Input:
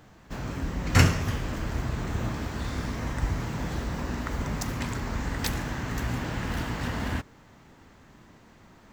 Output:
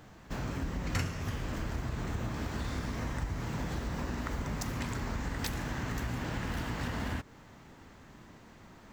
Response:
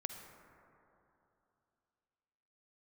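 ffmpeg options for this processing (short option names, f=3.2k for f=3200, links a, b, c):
-af "acompressor=threshold=-32dB:ratio=4"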